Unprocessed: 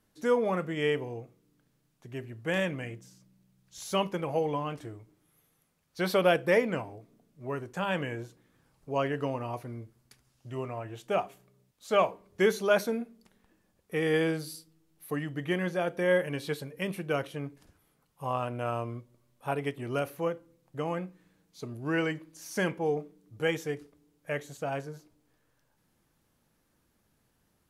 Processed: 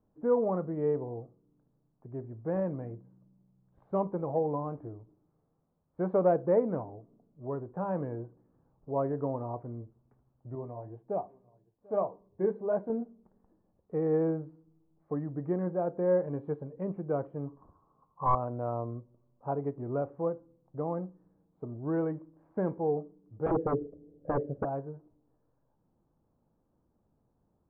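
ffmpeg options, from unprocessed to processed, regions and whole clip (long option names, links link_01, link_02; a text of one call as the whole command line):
ffmpeg -i in.wav -filter_complex "[0:a]asettb=1/sr,asplit=3[link_01][link_02][link_03];[link_01]atrim=end=10.554[link_04];[link_02]atrim=start=10.55:end=12.9,asetpts=PTS-STARTPTS,afade=type=in:duration=0.004:curve=qsin,afade=type=out:start_time=2.346:duration=0.004:curve=qsin,bandreject=frequency=1300:width=5.4,aecho=1:1:742:0.0668,atrim=end_sample=103635,flanger=delay=4.4:depth=6.8:regen=-52:speed=1.8:shape=triangular[link_05];[link_03]atrim=start=12.896[link_06];[link_04][link_05]acrossfade=duration=0.004:curve1=hsin:curve2=qsin[link_07];[link_07][link_06]acrossfade=duration=0.004:curve1=qsin:curve2=hsin,asettb=1/sr,asplit=3[link_08][link_09][link_10];[link_08]atrim=end=17.474[link_11];[link_09]atrim=start=17.47:end=18.35,asetpts=PTS-STARTPTS,afade=type=in:duration=0.004:curve=qsin,afade=type=out:start_time=0.876:duration=0.004:curve=qsin,lowpass=frequency=1100:width_type=q:width=13,aeval=exprs='clip(val(0),-1,0.0841)':channel_layout=same[link_12];[link_10]atrim=start=18.346[link_13];[link_11][link_12]acrossfade=duration=0.004:curve1=hsin:curve2=qsin[link_14];[link_14][link_13]acrossfade=duration=0.004:curve1=qsin:curve2=hsin,asettb=1/sr,asplit=3[link_15][link_16][link_17];[link_15]atrim=end=23.464[link_18];[link_16]atrim=start=23.46:end=24.65,asetpts=PTS-STARTPTS,afade=type=in:duration=0.004:curve=qsin,afade=type=out:start_time=1.186:duration=0.004:curve=qsin,lowshelf=frequency=710:width_type=q:width=3:gain=9.5,aeval=exprs='0.0944*(abs(mod(val(0)/0.0944+3,4)-2)-1)':channel_layout=same[link_19];[link_17]atrim=start=24.646[link_20];[link_18][link_19]acrossfade=duration=0.004:curve1=hsin:curve2=qsin[link_21];[link_21][link_20]acrossfade=duration=0.004:curve1=qsin:curve2=hsin,lowpass=frequency=1000:width=0.5412,lowpass=frequency=1000:width=1.3066,aemphasis=mode=reproduction:type=50fm,acontrast=34,volume=-6dB" out.wav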